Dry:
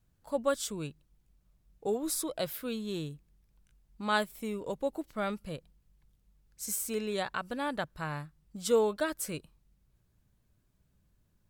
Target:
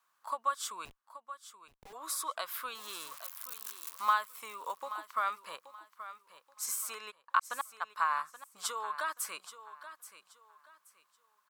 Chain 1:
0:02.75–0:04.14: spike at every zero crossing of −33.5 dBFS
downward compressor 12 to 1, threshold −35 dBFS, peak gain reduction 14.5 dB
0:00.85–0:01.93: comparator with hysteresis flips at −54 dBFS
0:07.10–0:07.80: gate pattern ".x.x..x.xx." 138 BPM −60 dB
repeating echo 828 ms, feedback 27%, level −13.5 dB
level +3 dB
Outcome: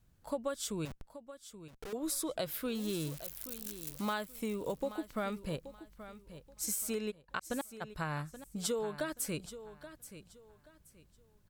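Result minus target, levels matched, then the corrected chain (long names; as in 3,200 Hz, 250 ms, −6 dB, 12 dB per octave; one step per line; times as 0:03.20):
1,000 Hz band −9.0 dB
0:02.75–0:04.14: spike at every zero crossing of −33.5 dBFS
downward compressor 12 to 1, threshold −35 dBFS, peak gain reduction 14.5 dB
high-pass with resonance 1,100 Hz, resonance Q 6.2
0:00.85–0:01.93: comparator with hysteresis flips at −54 dBFS
0:07.10–0:07.80: gate pattern ".x.x..x.xx." 138 BPM −60 dB
repeating echo 828 ms, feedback 27%, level −13.5 dB
level +3 dB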